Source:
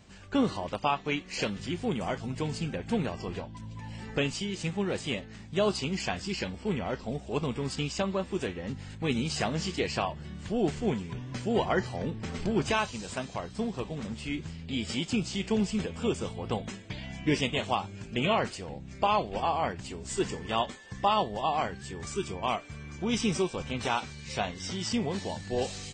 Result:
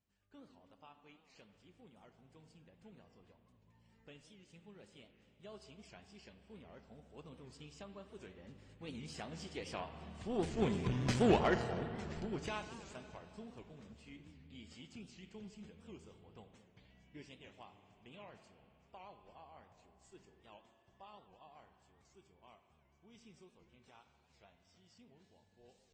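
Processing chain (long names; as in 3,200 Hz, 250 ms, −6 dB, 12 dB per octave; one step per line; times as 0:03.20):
source passing by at 0:11.04, 8 m/s, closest 1.5 metres
on a send at −9 dB: convolution reverb RT60 2.8 s, pre-delay 58 ms
on the sum: harmonic generator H 8 −24 dB, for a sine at −19.5 dBFS
parametric band 68 Hz +4.5 dB 0.37 octaves
wow of a warped record 78 rpm, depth 160 cents
level +3 dB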